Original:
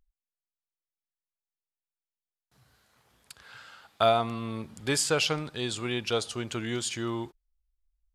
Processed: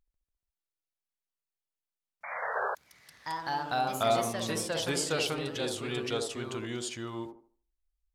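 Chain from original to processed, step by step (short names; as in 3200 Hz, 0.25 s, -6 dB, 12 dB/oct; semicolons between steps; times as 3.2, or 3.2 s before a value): band-limited delay 76 ms, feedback 30%, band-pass 460 Hz, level -3.5 dB; painted sound noise, 2.55–2.75, 370–1700 Hz -26 dBFS; echoes that change speed 0.143 s, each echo +2 st, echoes 3; gain -5.5 dB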